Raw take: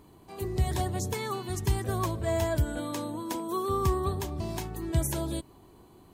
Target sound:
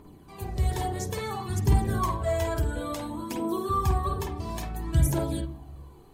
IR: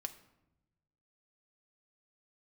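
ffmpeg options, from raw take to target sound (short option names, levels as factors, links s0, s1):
-filter_complex "[0:a]aphaser=in_gain=1:out_gain=1:delay=2.5:decay=0.56:speed=0.58:type=triangular,asplit=2[s0][s1];[1:a]atrim=start_sample=2205,lowpass=2200,adelay=50[s2];[s1][s2]afir=irnorm=-1:irlink=0,volume=1.41[s3];[s0][s3]amix=inputs=2:normalize=0,volume=0.75"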